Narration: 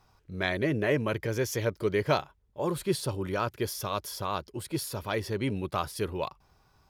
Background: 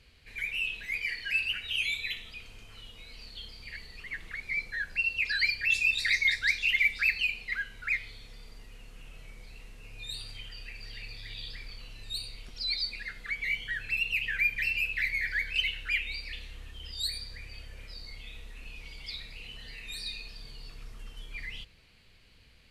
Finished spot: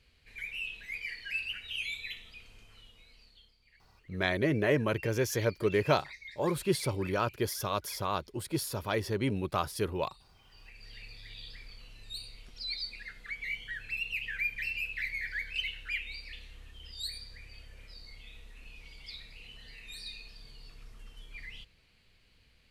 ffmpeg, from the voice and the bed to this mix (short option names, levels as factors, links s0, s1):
-filter_complex "[0:a]adelay=3800,volume=0.944[s0];[1:a]volume=3.35,afade=t=out:st=2.59:d=0.97:silence=0.158489,afade=t=in:st=10.4:d=0.54:silence=0.149624[s1];[s0][s1]amix=inputs=2:normalize=0"